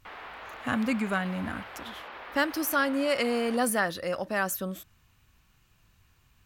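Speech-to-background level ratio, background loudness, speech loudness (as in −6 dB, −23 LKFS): 14.0 dB, −43.0 LKFS, −29.0 LKFS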